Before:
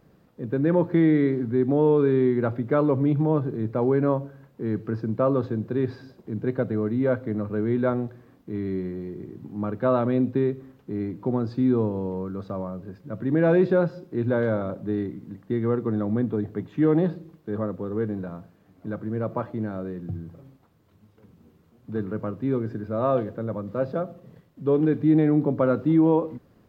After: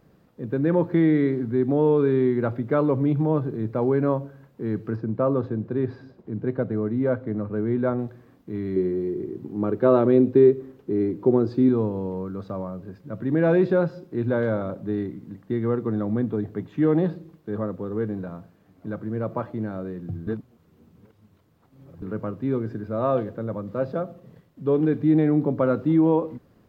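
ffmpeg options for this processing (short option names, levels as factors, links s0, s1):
-filter_complex "[0:a]asettb=1/sr,asplit=3[s0][s1][s2];[s0]atrim=end=4.964[s3];[s1]atrim=start=4.96:end=7.99,asetpts=PTS-STARTPTS,afade=t=in:d=0.004:c=qsin,afade=t=out:st=3.026:d=0.004:c=qsin,highshelf=f=3300:g=-11.5[s4];[s2]atrim=start=7.986[s5];[s3][s4]acrossfade=d=0.004:c1=hsin:c2=qsin[s6];[s6][s5]acrossfade=d=0.004:c1=qsin:c2=hsin,asettb=1/sr,asplit=3[s7][s8][s9];[s7]atrim=end=8.764[s10];[s8]atrim=start=8.76:end=11.69,asetpts=PTS-STARTPTS,afade=t=in:d=0.004:c=qsin,afade=t=out:st=2.926:d=0.004:c=qsin,equalizer=f=380:t=o:w=0.77:g=10.5[s11];[s9]atrim=start=11.686[s12];[s10][s11]acrossfade=d=0.004:c1=hsin:c2=qsin[s13];[s13][s12]acrossfade=d=0.004:c1=qsin:c2=hsin,asplit=3[s14][s15][s16];[s14]atrim=end=20.272[s17];[s15]atrim=start=20.268:end=22.022,asetpts=PTS-STARTPTS,areverse[s18];[s16]atrim=start=22.018[s19];[s17][s18]acrossfade=d=0.004:c1=hsin:c2=hsin[s20];[s20][s19]acrossfade=d=0.004:c1=hsin:c2=hsin"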